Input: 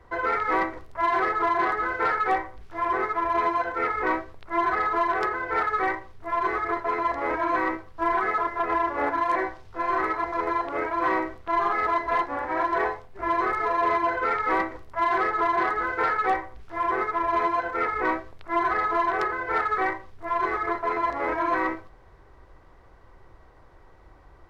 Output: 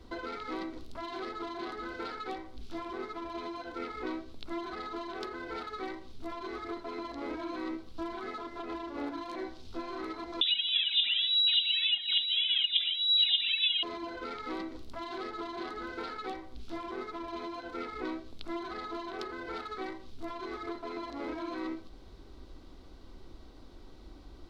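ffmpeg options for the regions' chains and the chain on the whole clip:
-filter_complex "[0:a]asettb=1/sr,asplit=3[a][b][c];[a]atrim=end=10.414[d];[b]atrim=start=10.41:end=13.83,asetpts=PTS-STARTPTS,afade=t=in:d=0.004:c=qsin,afade=t=out:st=3.416:d=0.004:c=qsin,aphaser=in_gain=1:out_gain=1:delay=2.4:decay=0.8:speed=1.7:type=triangular,lowpass=f=3.3k:t=q:w=0.5098,lowpass=f=3.3k:t=q:w=0.6013,lowpass=f=3.3k:t=q:w=0.9,lowpass=f=3.3k:t=q:w=2.563,afreqshift=-3900[e];[c]atrim=start=13.826[f];[d][e]acrossfade=d=0.004:c1=hsin:c2=qsin[g];[g][f]acrossfade=d=0.004:c1=qsin:c2=hsin,equalizer=f=1.8k:t=o:w=0.31:g=-8,acompressor=threshold=-36dB:ratio=4,equalizer=f=125:t=o:w=1:g=-9,equalizer=f=250:t=o:w=1:g=11,equalizer=f=500:t=o:w=1:g=-6,equalizer=f=1k:t=o:w=1:g=-9,equalizer=f=2k:t=o:w=1:g=-6,equalizer=f=4k:t=o:w=1:g=11,volume=3dB"

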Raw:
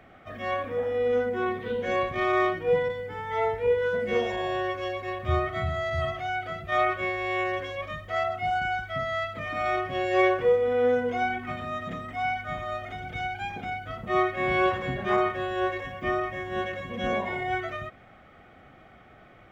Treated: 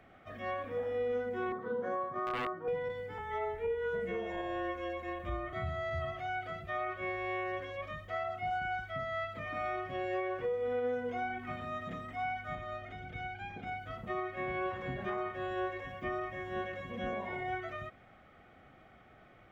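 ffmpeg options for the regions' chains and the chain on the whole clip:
-filter_complex "[0:a]asettb=1/sr,asplit=3[a][b][c];[a]atrim=end=1.524[d];[b]atrim=start=1.52:end=2.68,asetpts=PTS-STARTPTS,afade=t=in:d=0.004:c=qsin,afade=t=out:st=1.156:d=0.004:c=qsin,highpass=f=130:w=0.5412,highpass=f=130:w=1.3066,highshelf=f=1.8k:t=q:w=3:g=-12,aeval=exprs='(mod(4.47*val(0)+1,2)-1)/4.47':c=same[e];[c]atrim=start=2.676[f];[d][e]acrossfade=d=0.004:c1=hsin:c2=qsin[g];[g][f]acrossfade=d=0.004:c1=qsin:c2=hsin,asettb=1/sr,asplit=3[h][i][j];[h]atrim=end=3.184[k];[i]atrim=start=3.18:end=5.53,asetpts=PTS-STARTPTS,afade=t=in:d=0.004:c=qsin,afade=t=out:st=2.346:d=0.004:c=qsin,equalizer=f=4.8k:w=3.1:g=-8.5,afreqshift=-22[l];[j]atrim=start=5.526[m];[k][l]acrossfade=d=0.004:c1=hsin:c2=qsin[n];[n][m]acrossfade=d=0.004:c1=qsin:c2=hsin,asettb=1/sr,asplit=3[o][p][q];[o]atrim=end=12.554[r];[p]atrim=start=12.55:end=13.67,asetpts=PTS-STARTPTS,afade=t=in:d=0.004:c=qsin,afade=t=out:st=1.116:d=0.004:c=qsin,lowpass=f=3.4k:p=1,equalizer=f=880:t=o:w=0.89:g=-4.5[s];[q]atrim=start=13.666[t];[r][s]acrossfade=d=0.004:c1=hsin:c2=qsin[u];[u][t]acrossfade=d=0.004:c1=qsin:c2=hsin,acrossover=split=2800[v][w];[w]acompressor=threshold=-51dB:ratio=4:attack=1:release=60[x];[v][x]amix=inputs=2:normalize=0,alimiter=limit=-21dB:level=0:latency=1:release=234,volume=-6.5dB"

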